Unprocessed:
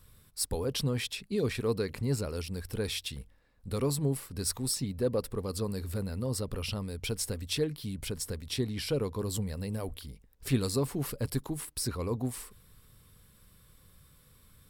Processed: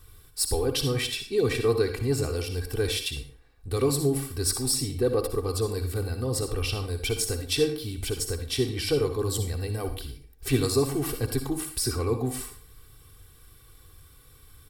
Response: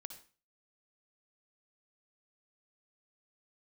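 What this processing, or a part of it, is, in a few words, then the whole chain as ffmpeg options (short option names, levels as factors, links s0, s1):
microphone above a desk: -filter_complex "[0:a]aecho=1:1:2.6:0.8[s0];[1:a]atrim=start_sample=2205[s1];[s0][s1]afir=irnorm=-1:irlink=0,volume=2.82"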